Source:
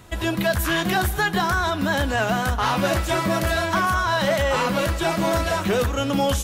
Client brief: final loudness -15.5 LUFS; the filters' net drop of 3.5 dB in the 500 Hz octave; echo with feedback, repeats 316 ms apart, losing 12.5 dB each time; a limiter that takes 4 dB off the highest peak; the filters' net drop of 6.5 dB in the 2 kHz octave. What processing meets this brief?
peaking EQ 500 Hz -4 dB; peaking EQ 2 kHz -9 dB; peak limiter -17 dBFS; feedback delay 316 ms, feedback 24%, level -12.5 dB; trim +10 dB

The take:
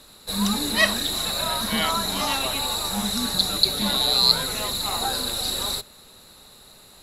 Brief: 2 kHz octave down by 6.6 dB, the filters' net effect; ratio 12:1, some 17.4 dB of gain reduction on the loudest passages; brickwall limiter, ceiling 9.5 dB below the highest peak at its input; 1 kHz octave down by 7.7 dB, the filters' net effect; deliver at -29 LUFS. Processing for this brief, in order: peaking EQ 1 kHz -8.5 dB; peaking EQ 2 kHz -5.5 dB; compression 12:1, threshold -31 dBFS; trim +5.5 dB; peak limiter -20.5 dBFS

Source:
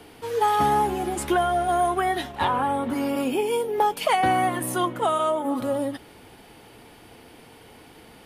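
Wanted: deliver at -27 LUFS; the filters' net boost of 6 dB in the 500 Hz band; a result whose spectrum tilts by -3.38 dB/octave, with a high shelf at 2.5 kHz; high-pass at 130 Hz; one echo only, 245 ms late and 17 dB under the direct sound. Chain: high-pass 130 Hz; peaking EQ 500 Hz +7.5 dB; treble shelf 2.5 kHz +6.5 dB; delay 245 ms -17 dB; trim -7.5 dB

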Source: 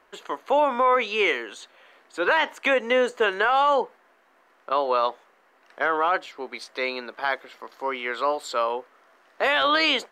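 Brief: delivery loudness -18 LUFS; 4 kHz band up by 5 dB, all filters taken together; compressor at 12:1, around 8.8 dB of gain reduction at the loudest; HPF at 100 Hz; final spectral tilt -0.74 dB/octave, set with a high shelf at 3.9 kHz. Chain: high-pass 100 Hz; treble shelf 3.9 kHz +5 dB; peaking EQ 4 kHz +4 dB; compression 12:1, threshold -24 dBFS; trim +11.5 dB

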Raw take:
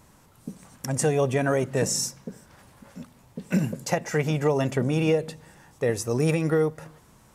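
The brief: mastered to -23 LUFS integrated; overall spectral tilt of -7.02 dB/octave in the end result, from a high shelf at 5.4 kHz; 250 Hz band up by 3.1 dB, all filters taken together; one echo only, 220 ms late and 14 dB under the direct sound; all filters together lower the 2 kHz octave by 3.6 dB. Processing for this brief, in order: peaking EQ 250 Hz +4.5 dB; peaking EQ 2 kHz -3.5 dB; treble shelf 5.4 kHz -8 dB; delay 220 ms -14 dB; trim +1 dB

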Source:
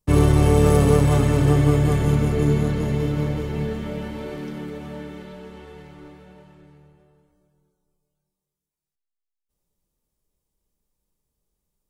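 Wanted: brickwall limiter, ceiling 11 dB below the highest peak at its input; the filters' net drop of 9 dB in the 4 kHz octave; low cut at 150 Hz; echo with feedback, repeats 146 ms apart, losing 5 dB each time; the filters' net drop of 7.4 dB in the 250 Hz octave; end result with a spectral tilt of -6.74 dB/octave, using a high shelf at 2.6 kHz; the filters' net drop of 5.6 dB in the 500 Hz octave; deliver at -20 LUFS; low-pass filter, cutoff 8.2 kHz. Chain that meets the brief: high-pass 150 Hz; low-pass 8.2 kHz; peaking EQ 250 Hz -8.5 dB; peaking EQ 500 Hz -3.5 dB; treble shelf 2.6 kHz -7 dB; peaking EQ 4 kHz -6 dB; peak limiter -20.5 dBFS; feedback delay 146 ms, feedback 56%, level -5 dB; trim +9 dB

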